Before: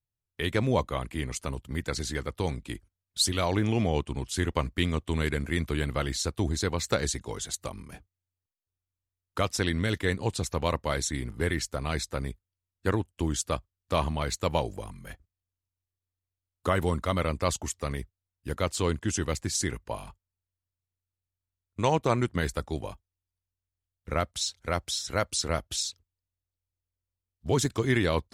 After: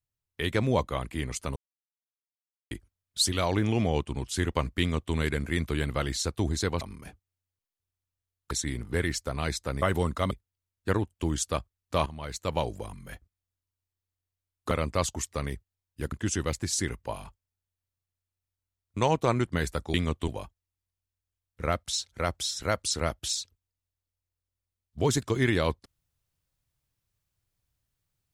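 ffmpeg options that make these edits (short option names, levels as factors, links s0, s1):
-filter_complex "[0:a]asplit=12[s0][s1][s2][s3][s4][s5][s6][s7][s8][s9][s10][s11];[s0]atrim=end=1.56,asetpts=PTS-STARTPTS,afade=t=out:st=1.556:d=0.004:c=hsin[s12];[s1]atrim=start=1.56:end=2.71,asetpts=PTS-STARTPTS,volume=0[s13];[s2]atrim=start=2.71:end=6.812,asetpts=PTS-STARTPTS,afade=t=in:d=0.004:c=hsin[s14];[s3]atrim=start=7.678:end=9.382[s15];[s4]atrim=start=10.978:end=12.292[s16];[s5]atrim=start=16.688:end=17.182[s17];[s6]atrim=start=12.288:end=14.04,asetpts=PTS-STARTPTS,afade=t=out:st=1.748:d=0.004:c=hsin:silence=0.199526[s18];[s7]atrim=start=14.04:end=16.692,asetpts=PTS-STARTPTS,afade=t=in:d=0.66:silence=0.199526[s19];[s8]atrim=start=17.178:end=18.592[s20];[s9]atrim=start=18.938:end=22.762[s21];[s10]atrim=start=4.798:end=5.142[s22];[s11]atrim=start=22.758[s23];[s12][s13][s14]concat=n=3:v=0:a=1[s24];[s24][s15]acrossfade=d=0.004:c1=hsin:c2=hsin[s25];[s25][s16]acrossfade=d=0.004:c1=hsin:c2=hsin[s26];[s26][s17]acrossfade=d=0.004:c1=hsin:c2=hsin[s27];[s18][s19]concat=n=2:v=0:a=1[s28];[s27][s28]acrossfade=d=0.004:c1=hsin:c2=hsin[s29];[s29][s20]acrossfade=d=0.004:c1=hsin:c2=hsin[s30];[s30][s21]acrossfade=d=0.004:c1=hsin:c2=hsin[s31];[s31][s22]acrossfade=d=0.004:c1=hsin:c2=hsin[s32];[s32][s23]acrossfade=d=0.004:c1=hsin:c2=hsin"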